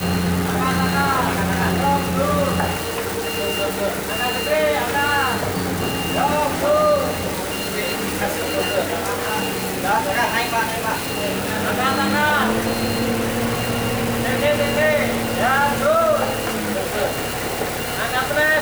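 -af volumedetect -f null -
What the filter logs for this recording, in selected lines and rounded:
mean_volume: -20.1 dB
max_volume: -6.5 dB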